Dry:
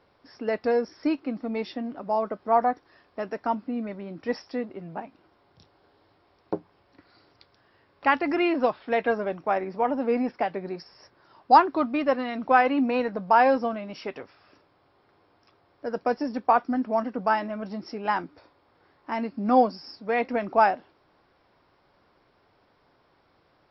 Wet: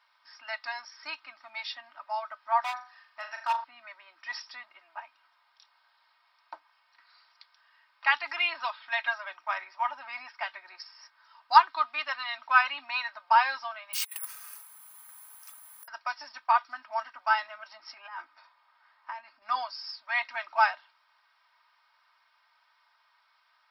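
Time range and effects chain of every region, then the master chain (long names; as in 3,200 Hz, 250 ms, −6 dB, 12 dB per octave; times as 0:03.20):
0:02.61–0:03.64: flutter between parallel walls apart 6.9 metres, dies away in 0.4 s + hard clipping −19 dBFS
0:13.93–0:15.88: compressor whose output falls as the input rises −43 dBFS, ratio −0.5 + bad sample-rate conversion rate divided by 4×, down filtered, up zero stuff
0:17.76–0:19.42: high-pass filter 130 Hz + high-shelf EQ 2,000 Hz −7.5 dB + compressor whose output falls as the input rises −34 dBFS
whole clip: inverse Chebyshev high-pass filter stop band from 480 Hz, stop band 40 dB; dynamic equaliser 3,900 Hz, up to +7 dB, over −54 dBFS, Q 2.2; comb filter 3.2 ms, depth 63%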